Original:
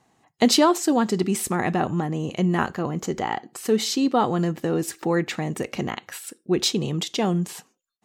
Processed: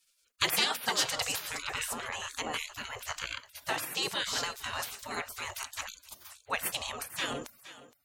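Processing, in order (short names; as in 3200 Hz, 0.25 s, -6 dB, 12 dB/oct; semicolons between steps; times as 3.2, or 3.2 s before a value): 1.62–2.06 LPF 5300 Hz; thinning echo 0.467 s, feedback 15%, high-pass 150 Hz, level -15 dB; spectral gate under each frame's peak -25 dB weak; gain +7.5 dB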